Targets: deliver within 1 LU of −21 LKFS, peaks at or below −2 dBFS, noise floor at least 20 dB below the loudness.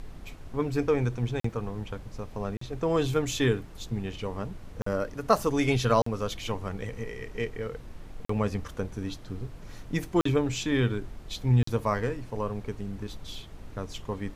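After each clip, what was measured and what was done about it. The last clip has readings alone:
number of dropouts 7; longest dropout 44 ms; background noise floor −46 dBFS; target noise floor −50 dBFS; integrated loudness −30.0 LKFS; sample peak −8.0 dBFS; target loudness −21.0 LKFS
→ repair the gap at 0:01.40/0:02.57/0:04.82/0:06.02/0:08.25/0:10.21/0:11.63, 44 ms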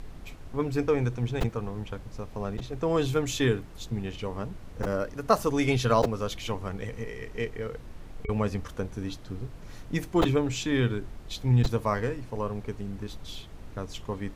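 number of dropouts 0; background noise floor −45 dBFS; target noise floor −50 dBFS
→ noise reduction from a noise print 6 dB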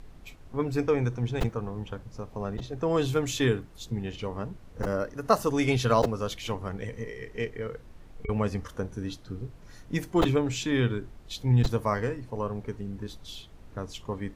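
background noise floor −50 dBFS; integrated loudness −30.0 LKFS; sample peak −8.0 dBFS; target loudness −21.0 LKFS
→ level +9 dB
brickwall limiter −2 dBFS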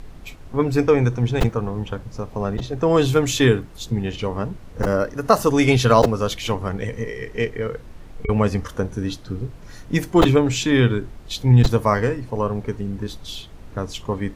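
integrated loudness −21.0 LKFS; sample peak −2.0 dBFS; background noise floor −41 dBFS

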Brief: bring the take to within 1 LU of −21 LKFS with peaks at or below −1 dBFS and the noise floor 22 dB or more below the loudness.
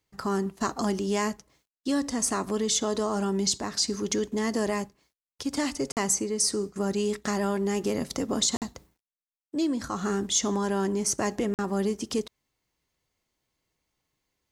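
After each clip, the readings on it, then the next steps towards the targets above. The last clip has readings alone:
number of dropouts 3; longest dropout 48 ms; integrated loudness −28.0 LKFS; sample peak −13.0 dBFS; target loudness −21.0 LKFS
→ repair the gap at 0:05.92/0:08.57/0:11.54, 48 ms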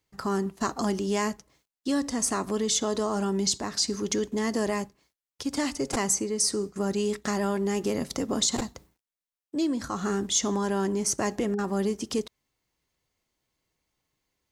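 number of dropouts 0; integrated loudness −28.0 LKFS; sample peak −13.0 dBFS; target loudness −21.0 LKFS
→ level +7 dB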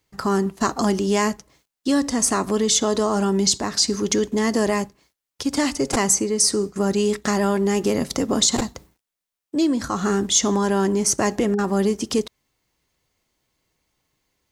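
integrated loudness −21.0 LKFS; sample peak −6.0 dBFS; background noise floor −86 dBFS

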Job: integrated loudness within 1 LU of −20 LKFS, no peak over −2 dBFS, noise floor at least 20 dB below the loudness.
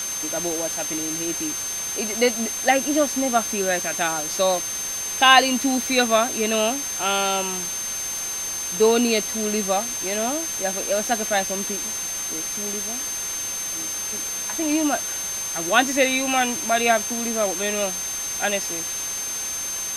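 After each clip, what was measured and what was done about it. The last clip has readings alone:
interfering tone 6,300 Hz; level of the tone −27 dBFS; background noise floor −29 dBFS; target noise floor −42 dBFS; integrated loudness −22.0 LKFS; sample peak −1.5 dBFS; target loudness −20.0 LKFS
→ notch filter 6,300 Hz, Q 30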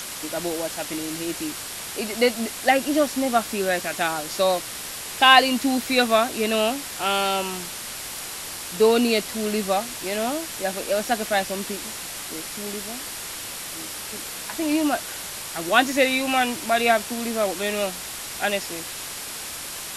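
interfering tone none found; background noise floor −34 dBFS; target noise floor −44 dBFS
→ broadband denoise 10 dB, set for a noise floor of −34 dBFS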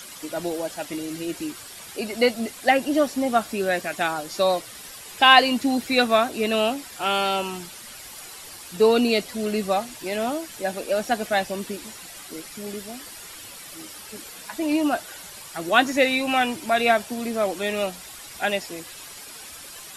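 background noise floor −41 dBFS; target noise floor −43 dBFS
→ broadband denoise 6 dB, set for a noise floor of −41 dBFS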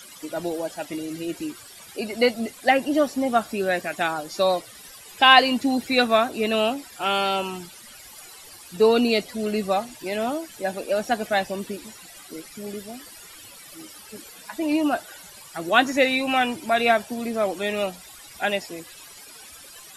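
background noise floor −45 dBFS; integrated loudness −23.0 LKFS; sample peak −2.0 dBFS; target loudness −20.0 LKFS
→ level +3 dB
brickwall limiter −2 dBFS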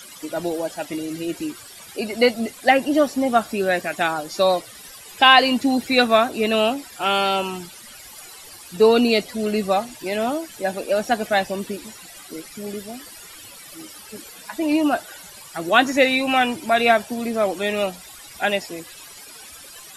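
integrated loudness −20.5 LKFS; sample peak −2.0 dBFS; background noise floor −42 dBFS

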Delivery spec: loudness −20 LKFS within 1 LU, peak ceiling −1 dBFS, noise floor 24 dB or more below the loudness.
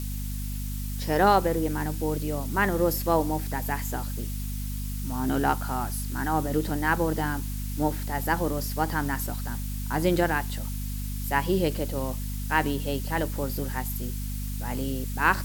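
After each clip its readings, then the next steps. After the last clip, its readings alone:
mains hum 50 Hz; hum harmonics up to 250 Hz; level of the hum −29 dBFS; background noise floor −32 dBFS; target noise floor −52 dBFS; integrated loudness −28.0 LKFS; sample peak −6.0 dBFS; target loudness −20.0 LKFS
→ mains-hum notches 50/100/150/200/250 Hz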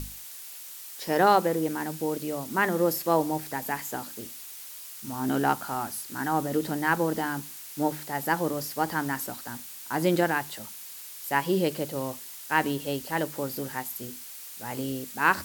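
mains hum none found; background noise floor −43 dBFS; target noise floor −53 dBFS
→ noise reduction from a noise print 10 dB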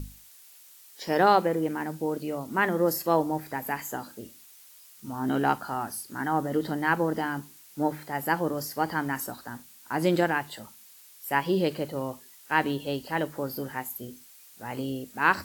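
background noise floor −53 dBFS; integrated loudness −28.5 LKFS; sample peak −7.0 dBFS; target loudness −20.0 LKFS
→ level +8.5 dB
brickwall limiter −1 dBFS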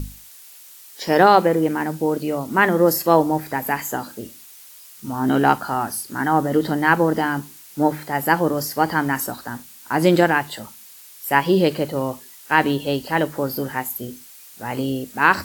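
integrated loudness −20.0 LKFS; sample peak −1.0 dBFS; background noise floor −44 dBFS

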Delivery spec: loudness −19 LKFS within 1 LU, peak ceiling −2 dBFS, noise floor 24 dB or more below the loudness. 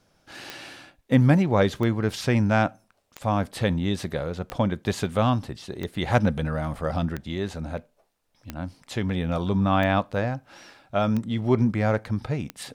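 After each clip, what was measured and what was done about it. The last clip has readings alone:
number of clicks 10; integrated loudness −25.0 LKFS; sample peak −6.5 dBFS; target loudness −19.0 LKFS
→ click removal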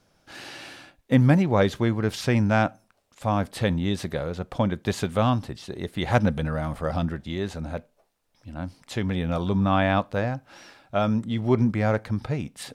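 number of clicks 0; integrated loudness −25.0 LKFS; sample peak −6.5 dBFS; target loudness −19.0 LKFS
→ level +6 dB
brickwall limiter −2 dBFS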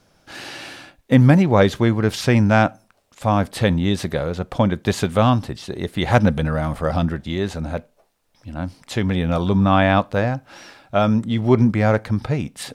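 integrated loudness −19.0 LKFS; sample peak −2.0 dBFS; background noise floor −62 dBFS

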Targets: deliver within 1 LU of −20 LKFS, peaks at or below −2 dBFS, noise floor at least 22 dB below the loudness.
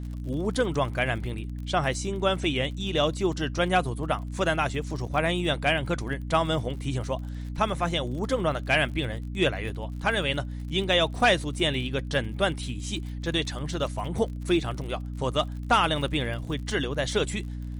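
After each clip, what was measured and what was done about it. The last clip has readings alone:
crackle rate 51 per second; mains hum 60 Hz; hum harmonics up to 300 Hz; level of the hum −32 dBFS; integrated loudness −27.0 LKFS; sample peak −10.5 dBFS; target loudness −20.0 LKFS
→ click removal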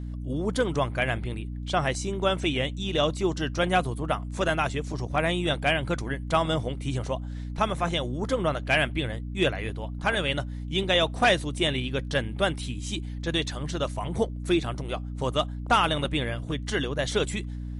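crackle rate 0.056 per second; mains hum 60 Hz; hum harmonics up to 300 Hz; level of the hum −32 dBFS
→ mains-hum notches 60/120/180/240/300 Hz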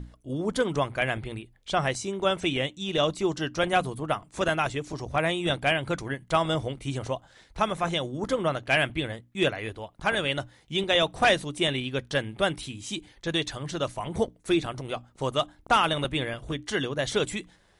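mains hum none found; integrated loudness −28.0 LKFS; sample peak −10.5 dBFS; target loudness −20.0 LKFS
→ level +8 dB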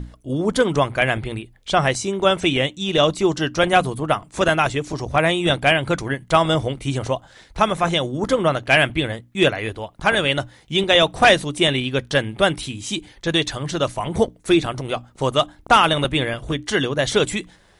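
integrated loudness −20.0 LKFS; sample peak −2.5 dBFS; background noise floor −53 dBFS

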